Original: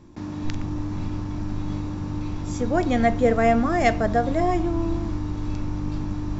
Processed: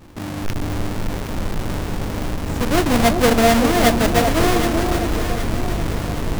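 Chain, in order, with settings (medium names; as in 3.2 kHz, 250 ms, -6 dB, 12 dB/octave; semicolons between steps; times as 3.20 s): square wave that keeps the level; echo whose repeats swap between lows and highs 384 ms, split 930 Hz, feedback 68%, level -5 dB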